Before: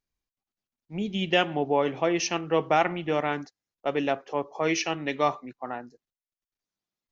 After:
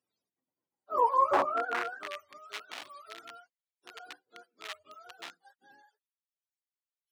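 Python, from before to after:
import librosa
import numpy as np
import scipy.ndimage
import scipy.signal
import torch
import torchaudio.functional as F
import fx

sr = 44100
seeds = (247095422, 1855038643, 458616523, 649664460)

y = fx.octave_mirror(x, sr, pivot_hz=450.0)
y = 10.0 ** (-19.0 / 20.0) * (np.abs((y / 10.0 ** (-19.0 / 20.0) + 3.0) % 4.0 - 2.0) - 1.0)
y = fx.filter_sweep_highpass(y, sr, from_hz=330.0, to_hz=3200.0, start_s=0.71, end_s=2.3, q=1.3)
y = y * librosa.db_to_amplitude(7.0)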